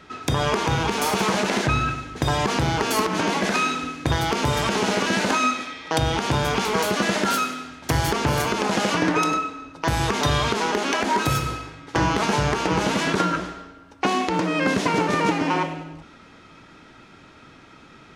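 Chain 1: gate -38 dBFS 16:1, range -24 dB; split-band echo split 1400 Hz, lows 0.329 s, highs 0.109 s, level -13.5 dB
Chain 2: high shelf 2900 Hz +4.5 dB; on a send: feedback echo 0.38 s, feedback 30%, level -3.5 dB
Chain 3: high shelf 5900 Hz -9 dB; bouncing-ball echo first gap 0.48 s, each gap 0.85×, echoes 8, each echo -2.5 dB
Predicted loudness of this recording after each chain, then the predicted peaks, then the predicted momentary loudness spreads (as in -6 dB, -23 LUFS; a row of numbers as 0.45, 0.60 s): -22.5, -20.0, -20.0 LUFS; -7.0, -4.0, -5.0 dBFS; 7, 4, 4 LU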